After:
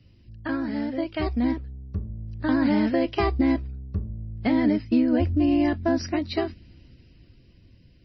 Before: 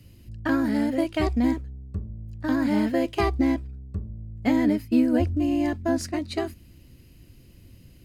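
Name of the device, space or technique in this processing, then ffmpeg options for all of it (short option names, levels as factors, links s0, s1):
low-bitrate web radio: -af "dynaudnorm=f=320:g=11:m=3.16,alimiter=limit=0.422:level=0:latency=1:release=204,volume=0.596" -ar 22050 -c:a libmp3lame -b:a 24k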